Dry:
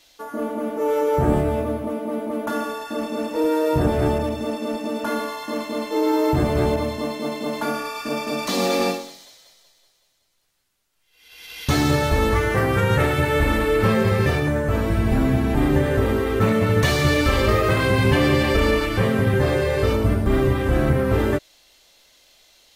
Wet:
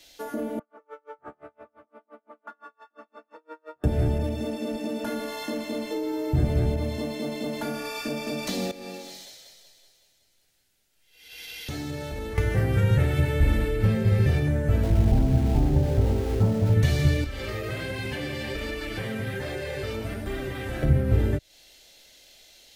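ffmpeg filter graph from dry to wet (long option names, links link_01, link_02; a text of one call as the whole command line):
ffmpeg -i in.wav -filter_complex "[0:a]asettb=1/sr,asplit=3[link_01][link_02][link_03];[link_01]atrim=end=0.594[link_04];[link_02]atrim=start=0.59:end=3.84,asetpts=PTS-STARTPTS,afade=type=in:duration=0.004:curve=qsin,afade=type=out:start_time=3.246:duration=0.004:curve=qsin,bandpass=frequency=1200:width_type=q:width=4.9,aeval=exprs='val(0)*pow(10,-38*(0.5-0.5*cos(2*PI*5.8*n/s))/20)':channel_layout=same[link_05];[link_03]atrim=start=3.836[link_06];[link_04][link_05]acrossfade=duration=0.004:curve1=hsin:curve2=qsin[link_07];[link_07][link_06]acrossfade=duration=0.004:curve1=qsin:curve2=hsin,asettb=1/sr,asplit=3[link_08][link_09][link_10];[link_08]atrim=end=8.714[link_11];[link_09]atrim=start=8.71:end=12.38,asetpts=PTS-STARTPTS,afade=type=in:duration=0.004:curve=qsin,afade=type=out:start_time=3.666:duration=0.004:curve=qsin,acompressor=threshold=-38dB:ratio=3:attack=3.2:release=140:knee=1:detection=peak,asplit=2[link_12][link_13];[link_13]adelay=48,volume=-13dB[link_14];[link_12][link_14]amix=inputs=2:normalize=0,atrim=end_sample=161847[link_15];[link_10]atrim=start=12.376[link_16];[link_11][link_15]acrossfade=duration=0.004:curve1=hsin:curve2=qsin[link_17];[link_17][link_16]acrossfade=duration=0.004:curve1=qsin:curve2=hsin,asettb=1/sr,asplit=3[link_18][link_19][link_20];[link_18]atrim=end=14.834[link_21];[link_19]atrim=start=14.83:end=16.74,asetpts=PTS-STARTPTS,afade=type=in:duration=0.004:curve=qsin,afade=type=out:start_time=1.906:duration=0.004:curve=qsin,lowpass=frequency=900:width_type=q:width=2.4,aeval=exprs='val(0)*gte(abs(val(0)),0.0531)':channel_layout=same[link_22];[link_20]atrim=start=16.736[link_23];[link_21][link_22]acrossfade=duration=0.004:curve1=hsin:curve2=qsin[link_24];[link_24][link_23]acrossfade=duration=0.004:curve1=qsin:curve2=hsin,asettb=1/sr,asplit=3[link_25][link_26][link_27];[link_25]atrim=end=17.244[link_28];[link_26]atrim=start=17.24:end=20.83,asetpts=PTS-STARTPTS,afade=type=in:duration=0.004:curve=qsin,afade=type=out:start_time=3.586:duration=0.004:curve=qsin,acrossover=split=750|6700[link_29][link_30][link_31];[link_29]acompressor=threshold=-29dB:ratio=4[link_32];[link_30]acompressor=threshold=-29dB:ratio=4[link_33];[link_31]acompressor=threshold=-50dB:ratio=4[link_34];[link_32][link_33][link_34]amix=inputs=3:normalize=0,flanger=delay=2.6:depth=6.7:regen=58:speed=1.3:shape=sinusoidal[link_35];[link_27]atrim=start=20.826[link_36];[link_28][link_35]acrossfade=duration=0.004:curve1=hsin:curve2=qsin[link_37];[link_37][link_36]acrossfade=duration=0.004:curve1=qsin:curve2=hsin,equalizer=frequency=1100:width=2.6:gain=-11,acrossover=split=160[link_38][link_39];[link_39]acompressor=threshold=-31dB:ratio=6[link_40];[link_38][link_40]amix=inputs=2:normalize=0,volume=2dB" out.wav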